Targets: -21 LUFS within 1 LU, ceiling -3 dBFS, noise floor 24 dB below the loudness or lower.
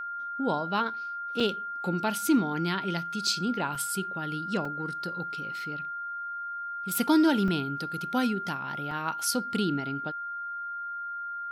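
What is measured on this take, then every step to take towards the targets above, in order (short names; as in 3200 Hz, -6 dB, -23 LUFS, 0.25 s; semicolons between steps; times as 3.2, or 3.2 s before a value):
dropouts 5; longest dropout 3.4 ms; steady tone 1400 Hz; tone level -33 dBFS; loudness -29.5 LUFS; peak -12.0 dBFS; loudness target -21.0 LUFS
-> interpolate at 1.4/3.75/4.65/7.48/8.91, 3.4 ms; notch 1400 Hz, Q 30; gain +8.5 dB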